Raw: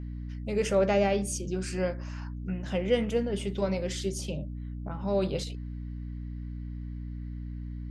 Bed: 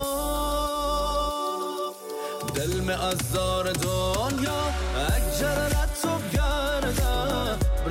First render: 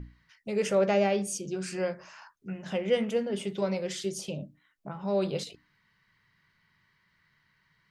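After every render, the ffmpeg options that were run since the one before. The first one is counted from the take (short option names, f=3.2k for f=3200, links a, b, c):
-af "bandreject=f=60:t=h:w=6,bandreject=f=120:t=h:w=6,bandreject=f=180:t=h:w=6,bandreject=f=240:t=h:w=6,bandreject=f=300:t=h:w=6"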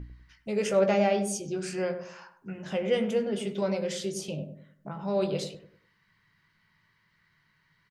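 -filter_complex "[0:a]asplit=2[a][b];[b]adelay=19,volume=-10.5dB[c];[a][c]amix=inputs=2:normalize=0,asplit=2[d][e];[e]adelay=98,lowpass=f=880:p=1,volume=-7dB,asplit=2[f][g];[g]adelay=98,lowpass=f=880:p=1,volume=0.41,asplit=2[h][i];[i]adelay=98,lowpass=f=880:p=1,volume=0.41,asplit=2[j][k];[k]adelay=98,lowpass=f=880:p=1,volume=0.41,asplit=2[l][m];[m]adelay=98,lowpass=f=880:p=1,volume=0.41[n];[d][f][h][j][l][n]amix=inputs=6:normalize=0"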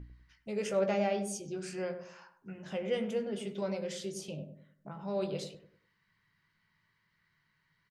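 -af "volume=-6.5dB"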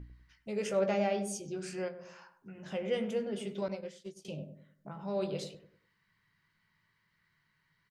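-filter_complex "[0:a]asettb=1/sr,asplit=3[a][b][c];[a]atrim=end=1.884[d];[b]atrim=start=1.88:end=2.62,asetpts=PTS-STARTPTS,afade=t=in:d=0.004:c=qsin,afade=t=out:st=0.736:d=0.004:c=qsin,acompressor=threshold=-46dB:ratio=2:attack=3.2:release=140:knee=1:detection=peak[e];[c]atrim=start=2.616[f];[d][e]acrossfade=d=0.004:c1=hsin:c2=qsin[g];[g][f]acrossfade=d=0.004:c1=qsin:c2=hsin,asettb=1/sr,asplit=3[h][i][j];[h]atrim=end=3.684[k];[i]atrim=start=3.68:end=4.25,asetpts=PTS-STARTPTS,afade=t=in:d=0.004:c=qsin,afade=t=out:st=0.566:d=0.004:c=qsin,agate=range=-33dB:threshold=-32dB:ratio=3:release=100:detection=peak[l];[j]atrim=start=4.246[m];[k][l]acrossfade=d=0.004:c1=hsin:c2=qsin[n];[n][m]acrossfade=d=0.004:c1=qsin:c2=hsin"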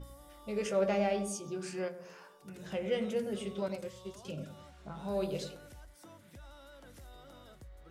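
-filter_complex "[1:a]volume=-28.5dB[a];[0:a][a]amix=inputs=2:normalize=0"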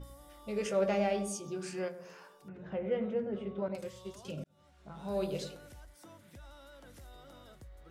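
-filter_complex "[0:a]asettb=1/sr,asplit=3[a][b][c];[a]atrim=end=2.484[d];[b]atrim=start=2.48:end=3.75,asetpts=PTS-STARTPTS,afade=t=in:d=0.004:c=qsin,afade=t=out:st=1.266:d=0.004:c=qsin,lowpass=1.6k[e];[c]atrim=start=3.746[f];[d][e]acrossfade=d=0.004:c1=hsin:c2=qsin[g];[g][f]acrossfade=d=0.004:c1=qsin:c2=hsin,asplit=2[h][i];[h]atrim=end=4.44,asetpts=PTS-STARTPTS,afade=t=out:st=4.436:d=0.004:c=hsin[j];[i]atrim=start=4.44,asetpts=PTS-STARTPTS,afade=t=in:d=0.73[k];[j][k]concat=n=2:v=0:a=1"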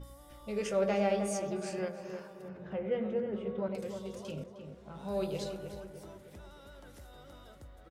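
-filter_complex "[0:a]asplit=2[a][b];[b]adelay=309,lowpass=f=1.8k:p=1,volume=-7dB,asplit=2[c][d];[d]adelay=309,lowpass=f=1.8k:p=1,volume=0.54,asplit=2[e][f];[f]adelay=309,lowpass=f=1.8k:p=1,volume=0.54,asplit=2[g][h];[h]adelay=309,lowpass=f=1.8k:p=1,volume=0.54,asplit=2[i][j];[j]adelay=309,lowpass=f=1.8k:p=1,volume=0.54,asplit=2[k][l];[l]adelay=309,lowpass=f=1.8k:p=1,volume=0.54,asplit=2[m][n];[n]adelay=309,lowpass=f=1.8k:p=1,volume=0.54[o];[a][c][e][g][i][k][m][o]amix=inputs=8:normalize=0"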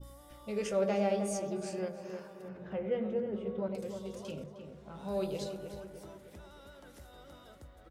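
-af "bandreject=f=50:t=h:w=6,bandreject=f=100:t=h:w=6,bandreject=f=150:t=h:w=6,adynamicequalizer=threshold=0.00316:dfrequency=1800:dqfactor=0.74:tfrequency=1800:tqfactor=0.74:attack=5:release=100:ratio=0.375:range=3:mode=cutabove:tftype=bell"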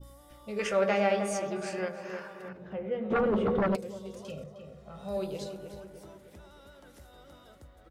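-filter_complex "[0:a]asettb=1/sr,asplit=3[a][b][c];[a]atrim=end=0.594[d];[b]atrim=start=0.59:end=2.53,asetpts=PTS-STARTPTS,afade=t=in:d=0.004:c=qsin,afade=t=out:st=1.936:d=0.004:c=qsin,equalizer=f=1.7k:t=o:w=2.1:g=13[e];[c]atrim=start=2.526[f];[d][e]acrossfade=d=0.004:c1=hsin:c2=qsin[g];[g][f]acrossfade=d=0.004:c1=qsin:c2=hsin,asplit=3[h][i][j];[h]afade=t=out:st=3.1:d=0.02[k];[i]aeval=exprs='0.075*sin(PI/2*3.16*val(0)/0.075)':c=same,afade=t=in:st=3.1:d=0.02,afade=t=out:st=3.75:d=0.02[l];[j]afade=t=in:st=3.75:d=0.02[m];[k][l][m]amix=inputs=3:normalize=0,asettb=1/sr,asplit=3[n][o][p];[n]atrim=end=4.294[q];[o]atrim=start=4.29:end=5.17,asetpts=PTS-STARTPTS,afade=t=in:d=0.004:c=qsin,afade=t=out:st=0.876:d=0.004:c=qsin,aecho=1:1:1.6:0.59,atrim=end_sample=38808[r];[p]atrim=start=5.166[s];[q][r]acrossfade=d=0.004:c1=hsin:c2=qsin[t];[t][s]acrossfade=d=0.004:c1=qsin:c2=hsin"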